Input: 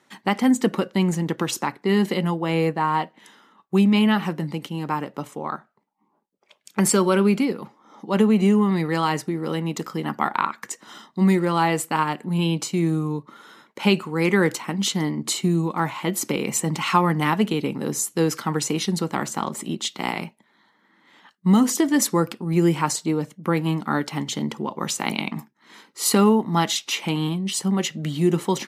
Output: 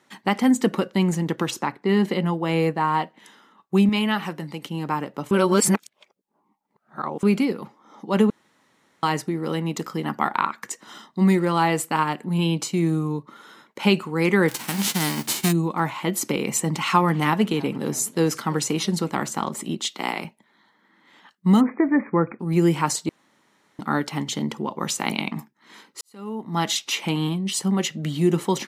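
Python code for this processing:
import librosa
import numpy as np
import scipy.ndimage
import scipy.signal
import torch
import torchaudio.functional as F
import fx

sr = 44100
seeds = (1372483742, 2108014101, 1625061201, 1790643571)

y = fx.high_shelf(x, sr, hz=4700.0, db=-7.5, at=(1.5, 2.34))
y = fx.low_shelf(y, sr, hz=450.0, db=-7.0, at=(3.89, 4.65))
y = fx.envelope_flatten(y, sr, power=0.3, at=(14.48, 15.51), fade=0.02)
y = fx.echo_warbled(y, sr, ms=326, feedback_pct=47, rate_hz=2.8, cents=201, wet_db=-22.5, at=(16.57, 19.1))
y = fx.highpass(y, sr, hz=240.0, slope=12, at=(19.82, 20.25))
y = fx.brickwall_lowpass(y, sr, high_hz=2500.0, at=(21.6, 22.39), fade=0.02)
y = fx.edit(y, sr, fx.reverse_span(start_s=5.31, length_s=1.92),
    fx.room_tone_fill(start_s=8.3, length_s=0.73),
    fx.room_tone_fill(start_s=23.09, length_s=0.7),
    fx.fade_in_span(start_s=26.01, length_s=0.7, curve='qua'), tone=tone)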